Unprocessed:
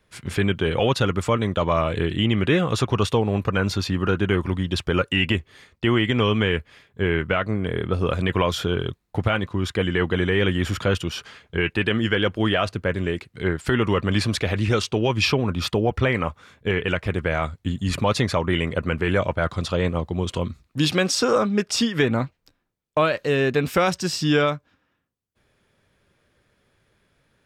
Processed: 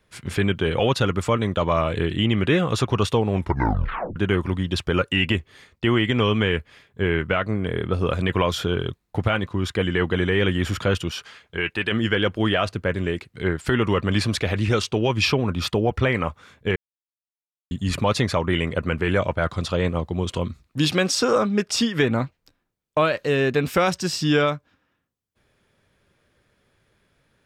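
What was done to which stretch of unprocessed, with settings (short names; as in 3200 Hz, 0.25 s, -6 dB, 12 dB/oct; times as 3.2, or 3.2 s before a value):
3.32 tape stop 0.84 s
11.11–11.92 low shelf 480 Hz -7.5 dB
16.76–17.71 mute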